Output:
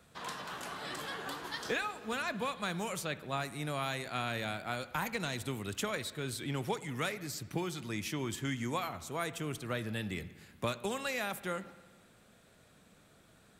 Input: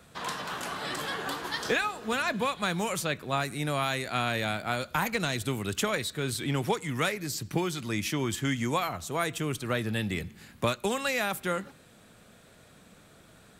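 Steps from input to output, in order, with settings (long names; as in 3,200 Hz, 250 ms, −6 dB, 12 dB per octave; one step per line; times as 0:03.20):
spring reverb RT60 1.5 s, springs 59 ms, chirp 55 ms, DRR 15.5 dB
level −7 dB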